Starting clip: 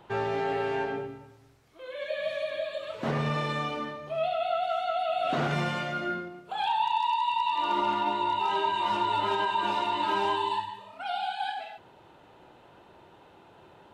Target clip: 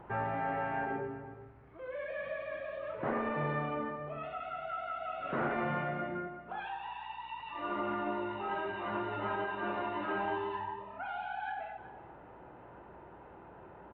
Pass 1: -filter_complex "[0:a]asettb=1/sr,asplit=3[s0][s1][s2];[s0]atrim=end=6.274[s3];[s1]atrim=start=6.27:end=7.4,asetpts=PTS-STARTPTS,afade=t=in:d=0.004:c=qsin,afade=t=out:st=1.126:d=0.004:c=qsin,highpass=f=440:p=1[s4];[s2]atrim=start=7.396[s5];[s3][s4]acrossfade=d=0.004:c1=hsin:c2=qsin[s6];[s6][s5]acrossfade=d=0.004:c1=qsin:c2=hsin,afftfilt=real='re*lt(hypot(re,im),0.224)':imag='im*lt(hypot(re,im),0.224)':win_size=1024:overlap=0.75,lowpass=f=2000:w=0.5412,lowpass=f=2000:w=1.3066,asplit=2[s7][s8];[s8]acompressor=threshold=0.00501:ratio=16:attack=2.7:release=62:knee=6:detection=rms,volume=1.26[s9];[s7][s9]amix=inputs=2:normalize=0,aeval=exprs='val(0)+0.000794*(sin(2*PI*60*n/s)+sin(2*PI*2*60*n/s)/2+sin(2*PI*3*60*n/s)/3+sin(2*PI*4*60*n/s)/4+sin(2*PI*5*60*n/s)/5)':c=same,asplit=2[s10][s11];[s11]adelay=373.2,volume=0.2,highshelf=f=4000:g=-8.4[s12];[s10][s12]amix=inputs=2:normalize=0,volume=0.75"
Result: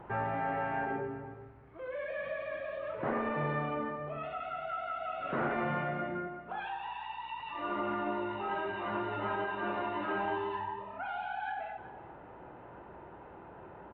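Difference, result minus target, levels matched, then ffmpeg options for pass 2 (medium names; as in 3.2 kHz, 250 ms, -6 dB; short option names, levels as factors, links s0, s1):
compression: peak gain reduction -9 dB
-filter_complex "[0:a]asettb=1/sr,asplit=3[s0][s1][s2];[s0]atrim=end=6.274[s3];[s1]atrim=start=6.27:end=7.4,asetpts=PTS-STARTPTS,afade=t=in:d=0.004:c=qsin,afade=t=out:st=1.126:d=0.004:c=qsin,highpass=f=440:p=1[s4];[s2]atrim=start=7.396[s5];[s3][s4]acrossfade=d=0.004:c1=hsin:c2=qsin[s6];[s6][s5]acrossfade=d=0.004:c1=qsin:c2=hsin,afftfilt=real='re*lt(hypot(re,im),0.224)':imag='im*lt(hypot(re,im),0.224)':win_size=1024:overlap=0.75,lowpass=f=2000:w=0.5412,lowpass=f=2000:w=1.3066,asplit=2[s7][s8];[s8]acompressor=threshold=0.00168:ratio=16:attack=2.7:release=62:knee=6:detection=rms,volume=1.26[s9];[s7][s9]amix=inputs=2:normalize=0,aeval=exprs='val(0)+0.000794*(sin(2*PI*60*n/s)+sin(2*PI*2*60*n/s)/2+sin(2*PI*3*60*n/s)/3+sin(2*PI*4*60*n/s)/4+sin(2*PI*5*60*n/s)/5)':c=same,asplit=2[s10][s11];[s11]adelay=373.2,volume=0.2,highshelf=f=4000:g=-8.4[s12];[s10][s12]amix=inputs=2:normalize=0,volume=0.75"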